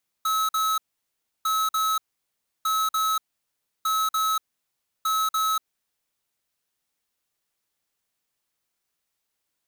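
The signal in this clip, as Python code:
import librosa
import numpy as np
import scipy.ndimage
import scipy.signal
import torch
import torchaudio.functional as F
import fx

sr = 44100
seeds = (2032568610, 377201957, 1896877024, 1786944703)

y = fx.beep_pattern(sr, wave='square', hz=1290.0, on_s=0.24, off_s=0.05, beeps=2, pause_s=0.67, groups=5, level_db=-23.5)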